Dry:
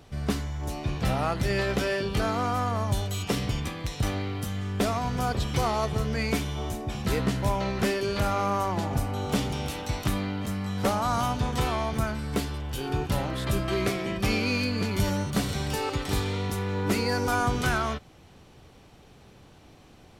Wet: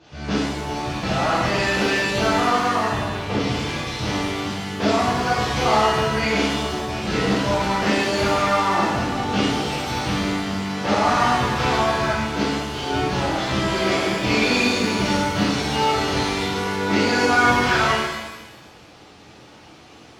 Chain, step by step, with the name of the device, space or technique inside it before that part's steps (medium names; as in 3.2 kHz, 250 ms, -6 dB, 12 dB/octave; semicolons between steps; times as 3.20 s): early wireless headset (high-pass 220 Hz 6 dB/octave; CVSD coder 32 kbps); 2.88–3.39 s: low-pass 1.7 kHz 6 dB/octave; pitch-shifted reverb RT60 1.1 s, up +7 st, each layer -8 dB, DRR -10.5 dB; trim -1.5 dB